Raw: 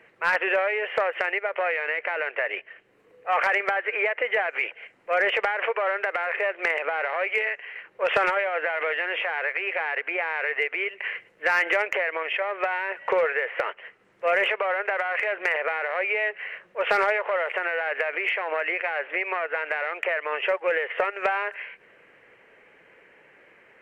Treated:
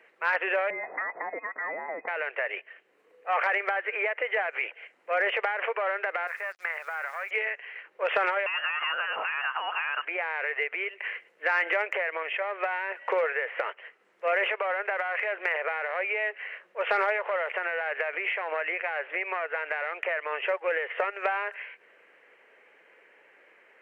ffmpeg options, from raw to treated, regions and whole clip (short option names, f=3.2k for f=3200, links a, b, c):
-filter_complex "[0:a]asettb=1/sr,asplit=3[a][b][c];[a]atrim=end=0.704[d];[b]atrim=start=0.7:end=2.08,asetpts=PTS-STARTPTS,afade=t=in:d=0.004:c=qsin,afade=t=out:st=1.376:d=0.004:c=qsin,equalizer=f=660:t=o:w=1.9:g=-4.5,aeval=exprs='(tanh(10*val(0)+0.05)-tanh(0.05))/10':c=same,lowpass=f=2.1k:t=q:w=0.5098,lowpass=f=2.1k:t=q:w=0.6013,lowpass=f=2.1k:t=q:w=0.9,lowpass=f=2.1k:t=q:w=2.563,afreqshift=-2500[e];[c]atrim=start=2.076[f];[d][e]acrossfade=d=0.004:c1=hsin:c2=qsin[g];[g][f]acrossfade=d=0.004:c1=qsin:c2=hsin,asettb=1/sr,asplit=3[h][i][j];[h]atrim=end=6.274[k];[i]atrim=start=6.27:end=7.31,asetpts=PTS-STARTPTS,afade=t=in:d=0.004:c=qsin,afade=t=out:st=1.036:d=0.004:c=qsin,agate=range=-7dB:threshold=-30dB:ratio=16:release=100:detection=peak,bandpass=f=1.4k:t=q:w=1.6,acrusher=bits=7:mix=0:aa=0.5[l];[j]atrim=start=7.306[m];[k][l]acrossfade=d=0.004:c1=hsin:c2=qsin[n];[n][m]acrossfade=d=0.004:c1=qsin:c2=hsin,asettb=1/sr,asplit=3[o][p][q];[o]atrim=end=8.464[r];[p]atrim=start=8.46:end=10.05,asetpts=PTS-STARTPTS,afade=t=in:d=0.004:c=qsin,afade=t=out:st=1.586:d=0.004:c=qsin,aeval=exprs='val(0)+0.5*0.01*sgn(val(0))':c=same,lowpass=f=2.8k:t=q:w=0.5098,lowpass=f=2.8k:t=q:w=0.6013,lowpass=f=2.8k:t=q:w=0.9,lowpass=f=2.8k:t=q:w=2.563,afreqshift=-3300[s];[q]atrim=start=10.046[t];[r][s]acrossfade=d=0.004:c1=hsin:c2=qsin[u];[u][t]acrossfade=d=0.004:c1=qsin:c2=hsin,highpass=360,acrossover=split=3700[v][w];[w]acompressor=threshold=-53dB:ratio=4:attack=1:release=60[x];[v][x]amix=inputs=2:normalize=0,volume=-3dB"